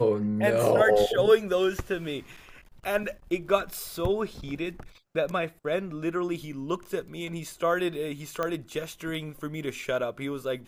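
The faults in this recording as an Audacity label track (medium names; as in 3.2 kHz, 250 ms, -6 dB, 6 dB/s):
8.430000	8.430000	pop -16 dBFS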